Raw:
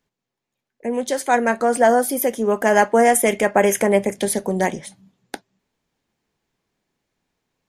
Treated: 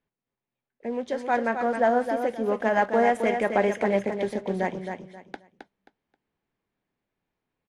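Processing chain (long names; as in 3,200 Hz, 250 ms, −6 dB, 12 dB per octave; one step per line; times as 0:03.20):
one scale factor per block 5 bits
low-pass filter 2,900 Hz 12 dB per octave
repeating echo 266 ms, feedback 25%, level −7 dB
level −7 dB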